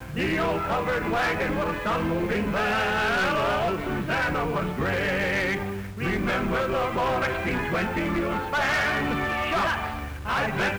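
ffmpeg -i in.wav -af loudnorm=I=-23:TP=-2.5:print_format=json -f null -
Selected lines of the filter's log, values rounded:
"input_i" : "-25.4",
"input_tp" : "-20.0",
"input_lra" : "1.0",
"input_thresh" : "-35.4",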